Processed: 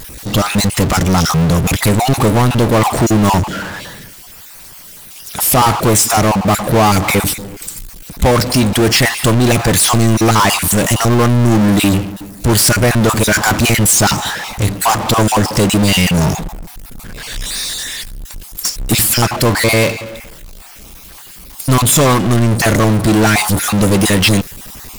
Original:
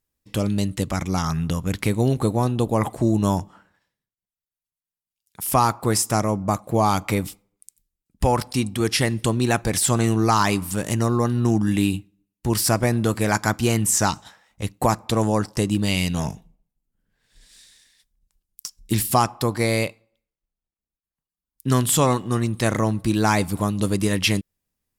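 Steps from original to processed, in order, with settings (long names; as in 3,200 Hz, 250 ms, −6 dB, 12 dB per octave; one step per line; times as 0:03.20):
time-frequency cells dropped at random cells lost 26%
power curve on the samples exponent 0.35
level +2 dB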